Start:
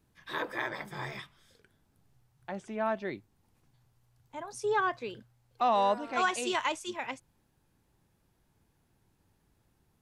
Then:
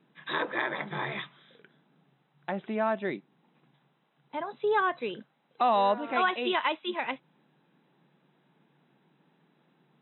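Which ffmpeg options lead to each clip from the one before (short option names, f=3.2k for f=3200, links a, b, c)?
-filter_complex "[0:a]asplit=2[a][b];[b]acompressor=threshold=-37dB:ratio=16,volume=3dB[c];[a][c]amix=inputs=2:normalize=0,afftfilt=real='re*between(b*sr/4096,130,4000)':imag='im*between(b*sr/4096,130,4000)':win_size=4096:overlap=0.75"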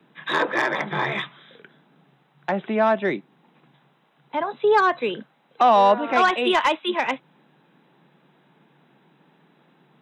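-filter_complex "[0:a]equalizer=f=1.2k:w=0.31:g=3,acrossover=split=110|280|800[a][b][c][d];[d]asoftclip=type=tanh:threshold=-22dB[e];[a][b][c][e]amix=inputs=4:normalize=0,volume=7dB"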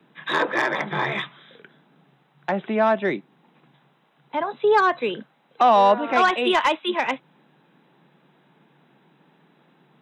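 -af anull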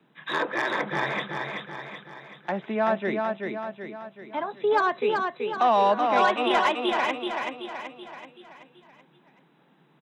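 -af "aecho=1:1:380|760|1140|1520|1900|2280:0.631|0.315|0.158|0.0789|0.0394|0.0197,volume=-5dB"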